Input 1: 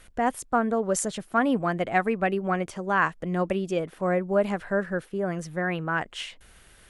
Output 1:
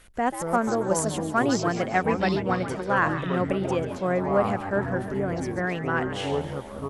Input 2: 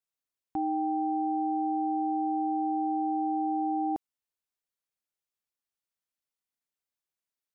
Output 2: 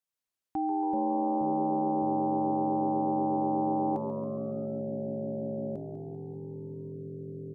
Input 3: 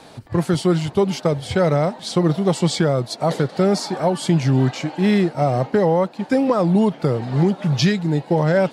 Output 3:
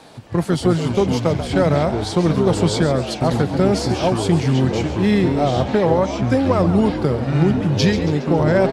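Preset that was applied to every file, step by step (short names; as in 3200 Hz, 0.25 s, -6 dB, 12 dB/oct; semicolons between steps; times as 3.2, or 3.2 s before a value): added harmonics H 3 -33 dB, 4 -25 dB, 6 -33 dB, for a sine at -5.5 dBFS; frequency-shifting echo 0.138 s, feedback 52%, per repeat +89 Hz, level -11.5 dB; echoes that change speed 0.154 s, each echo -6 st, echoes 3, each echo -6 dB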